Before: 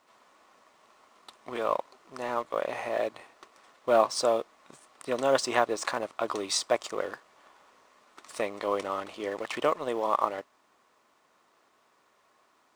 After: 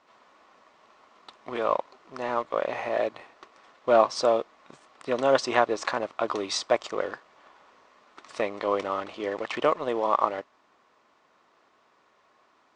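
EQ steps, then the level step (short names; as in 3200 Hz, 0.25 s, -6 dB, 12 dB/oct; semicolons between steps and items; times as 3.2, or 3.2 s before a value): Bessel low-pass 4800 Hz, order 6; +3.0 dB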